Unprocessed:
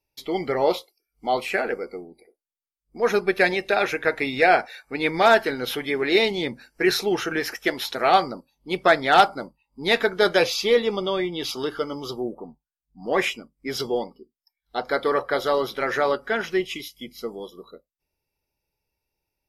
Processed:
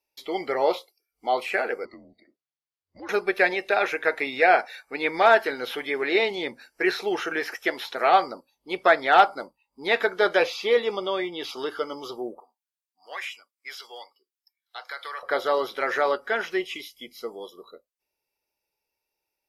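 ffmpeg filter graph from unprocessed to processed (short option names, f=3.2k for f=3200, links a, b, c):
-filter_complex "[0:a]asettb=1/sr,asplit=3[a][b][c];[a]atrim=end=1.854[d];[b]atrim=start=1.85:end=3.09,asetpts=PTS-STARTPTS,afade=t=in:d=0.004:c=qsin,afade=t=out:st=1.236:d=0.004:c=qsin,lowpass=f=5.4k:w=0.5412,lowpass=f=5.4k:w=1.3066,acompressor=threshold=-37dB:ratio=3:attack=3.2:release=140:knee=1:detection=peak,afreqshift=-140[e];[c]atrim=start=3.086[f];[d][e]acrossfade=d=0.004:c1=hsin:c2=qsin[g];[g][f]acrossfade=d=0.004:c1=qsin:c2=hsin,asettb=1/sr,asplit=3[h][i][j];[h]atrim=end=12.404[k];[i]atrim=start=12.4:end=15.23,asetpts=PTS-STARTPTS,afade=t=in:d=0.004:c=qsin,afade=t=out:st=2.826:d=0.004:c=qsin,highpass=1.4k,acompressor=threshold=-31dB:ratio=3:attack=3.2:release=140:knee=1:detection=peak[l];[j]atrim=start=15.226[m];[k][l]acrossfade=d=0.004:c1=hsin:c2=qsin[n];[n][m]acrossfade=d=0.004:c1=qsin:c2=hsin,lowshelf=f=220:g=-5.5,acrossover=split=3200[o][p];[p]acompressor=threshold=-41dB:ratio=4:attack=1:release=60[q];[o][q]amix=inputs=2:normalize=0,bass=f=250:g=-12,treble=f=4k:g=0"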